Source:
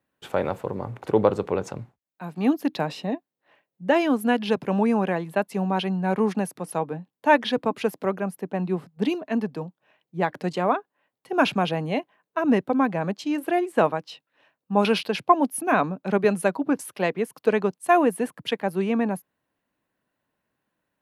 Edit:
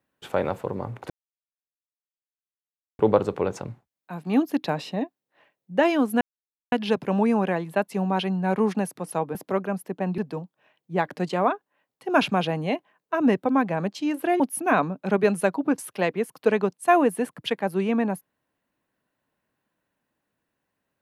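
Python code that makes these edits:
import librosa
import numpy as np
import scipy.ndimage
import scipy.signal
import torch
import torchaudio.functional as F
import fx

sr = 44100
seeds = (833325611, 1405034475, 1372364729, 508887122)

y = fx.edit(x, sr, fx.insert_silence(at_s=1.1, length_s=1.89),
    fx.insert_silence(at_s=4.32, length_s=0.51),
    fx.cut(start_s=6.95, length_s=0.93),
    fx.cut(start_s=8.71, length_s=0.71),
    fx.cut(start_s=13.64, length_s=1.77), tone=tone)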